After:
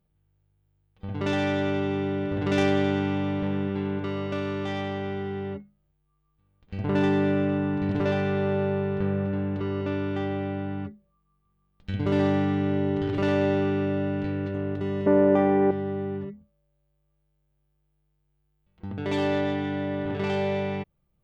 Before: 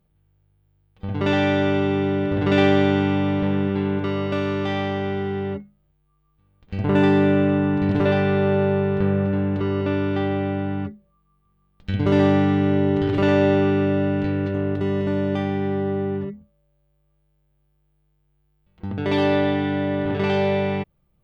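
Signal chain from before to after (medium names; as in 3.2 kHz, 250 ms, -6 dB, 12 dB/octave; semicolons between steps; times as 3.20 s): tracing distortion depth 0.058 ms; 15.06–15.71 s: ten-band graphic EQ 125 Hz -5 dB, 250 Hz +8 dB, 500 Hz +12 dB, 1 kHz +9 dB, 2 kHz +5 dB, 4 kHz -11 dB; trim -6 dB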